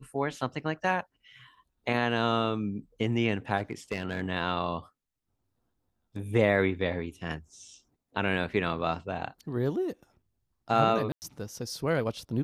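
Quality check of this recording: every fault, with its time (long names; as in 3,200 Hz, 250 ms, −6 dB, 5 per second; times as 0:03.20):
0:03.57–0:04.22: clipping −24 dBFS
0:11.12–0:11.22: drop-out 99 ms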